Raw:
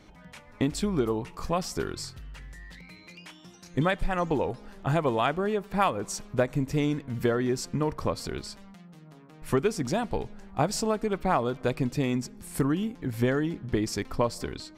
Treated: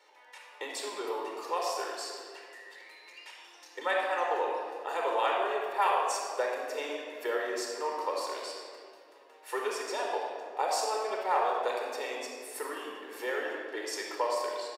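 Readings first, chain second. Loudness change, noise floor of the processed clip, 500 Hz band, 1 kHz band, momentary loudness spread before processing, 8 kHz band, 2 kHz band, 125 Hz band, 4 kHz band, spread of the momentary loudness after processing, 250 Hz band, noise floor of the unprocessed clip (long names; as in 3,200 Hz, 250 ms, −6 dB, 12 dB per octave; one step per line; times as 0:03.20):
−4.0 dB, −56 dBFS, −3.5 dB, +1.0 dB, 19 LU, −2.5 dB, 0.0 dB, below −40 dB, −1.0 dB, 19 LU, −17.5 dB, −52 dBFS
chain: Butterworth high-pass 430 Hz 36 dB per octave
comb filter 1.1 ms, depth 32%
rectangular room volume 4,000 cubic metres, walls mixed, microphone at 4.4 metres
level −6 dB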